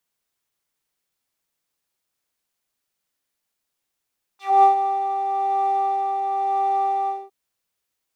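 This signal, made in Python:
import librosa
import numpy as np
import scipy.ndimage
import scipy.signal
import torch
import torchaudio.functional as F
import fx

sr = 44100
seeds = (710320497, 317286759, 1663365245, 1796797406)

y = fx.sub_patch_tremolo(sr, seeds[0], note=79, wave='triangle', wave2='square', interval_st=7, detune_cents=8, level2_db=-14.5, sub_db=-9.5, noise_db=-13.5, kind='bandpass', cutoff_hz=430.0, q=2.3, env_oct=3.5, env_decay_s=0.12, env_sustain_pct=20, attack_ms=240.0, decay_s=0.12, sustain_db=-9.0, release_s=0.21, note_s=2.7, lfo_hz=0.97, tremolo_db=3.5)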